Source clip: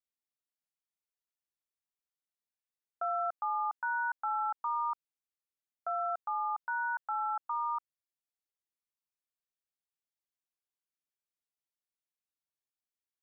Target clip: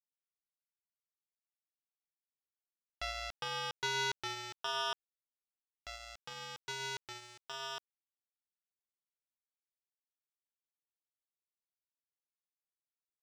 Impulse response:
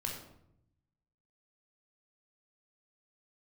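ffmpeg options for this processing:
-filter_complex "[0:a]asplit=2[s0][s1];[s1]equalizer=f=1400:w=3.7:g=6[s2];[1:a]atrim=start_sample=2205[s3];[s2][s3]afir=irnorm=-1:irlink=0,volume=0.0794[s4];[s0][s4]amix=inputs=2:normalize=0,acrusher=bits=3:mix=0:aa=0.5,volume=4.47"

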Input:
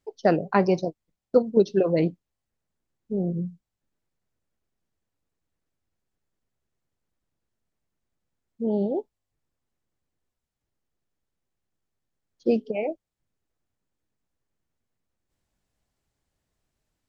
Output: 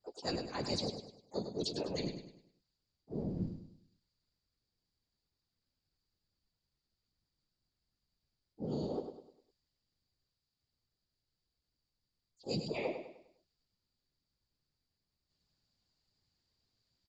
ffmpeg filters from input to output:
-filter_complex "[0:a]equalizer=f=79:w=0.74:g=4,bandreject=f=640:w=17,areverse,acompressor=threshold=0.0447:ratio=16,areverse,lowpass=f=4700:t=q:w=13,afftfilt=real='hypot(re,im)*cos(2*PI*random(0))':imag='hypot(re,im)*sin(2*PI*random(1))':win_size=512:overlap=0.75,asplit=3[s0][s1][s2];[s1]asetrate=37084,aresample=44100,atempo=1.18921,volume=0.282[s3];[s2]asetrate=66075,aresample=44100,atempo=0.66742,volume=0.224[s4];[s0][s3][s4]amix=inputs=3:normalize=0,asplit=2[s5][s6];[s6]aecho=0:1:101|202|303|404|505:0.398|0.159|0.0637|0.0255|0.0102[s7];[s5][s7]amix=inputs=2:normalize=0,adynamicequalizer=threshold=0.00126:dfrequency=1900:dqfactor=0.7:tfrequency=1900:tqfactor=0.7:attack=5:release=100:ratio=0.375:range=3.5:mode=boostabove:tftype=highshelf,volume=0.794"

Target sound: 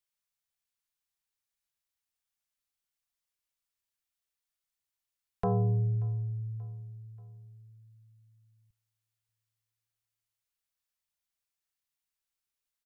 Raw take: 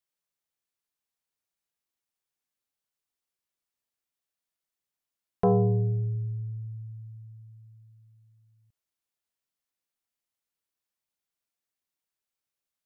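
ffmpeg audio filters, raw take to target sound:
-filter_complex "[0:a]equalizer=f=260:t=o:w=2.6:g=-13.5,aecho=1:1:583|1166|1749:0.0631|0.0297|0.0139,acrossover=split=290[s0][s1];[s0]acontrast=31[s2];[s2][s1]amix=inputs=2:normalize=0"

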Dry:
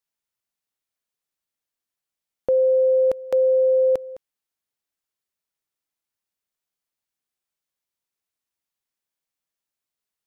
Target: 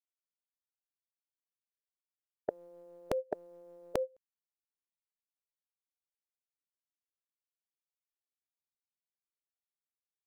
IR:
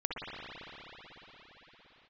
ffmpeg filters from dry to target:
-af "agate=range=0.0316:threshold=0.0447:ratio=16:detection=peak,afftfilt=real='re*lt(hypot(re,im),0.501)':imag='im*lt(hypot(re,im),0.501)':win_size=1024:overlap=0.75,volume=1.41"

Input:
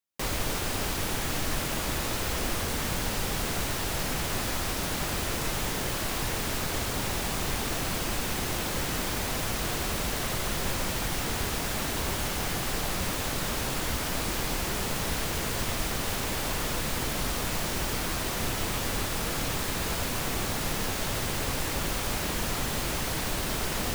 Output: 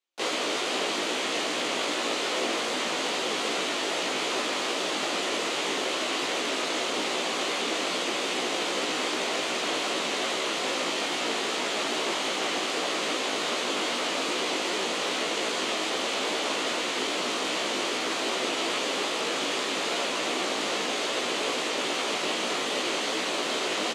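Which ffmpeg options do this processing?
-filter_complex "[0:a]highpass=f=290:w=0.5412,highpass=f=290:w=1.3066,equalizer=f=870:t=q:w=4:g=-4,equalizer=f=1600:t=q:w=4:g=-6,equalizer=f=3100:t=q:w=4:g=3,equalizer=f=5400:t=q:w=4:g=-7,lowpass=f=6800:w=0.5412,lowpass=f=6800:w=1.3066,flanger=delay=15.5:depth=3.8:speed=2.5,asplit=3[s0][s1][s2];[s1]asetrate=35002,aresample=44100,atempo=1.25992,volume=0.158[s3];[s2]asetrate=58866,aresample=44100,atempo=0.749154,volume=0.282[s4];[s0][s3][s4]amix=inputs=3:normalize=0,volume=2.66"

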